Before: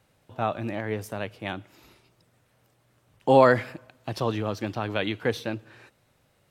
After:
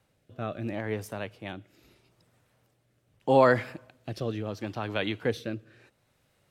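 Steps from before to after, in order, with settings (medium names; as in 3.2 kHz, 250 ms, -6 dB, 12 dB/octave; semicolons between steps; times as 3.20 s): rotary cabinet horn 0.75 Hz; trim -1.5 dB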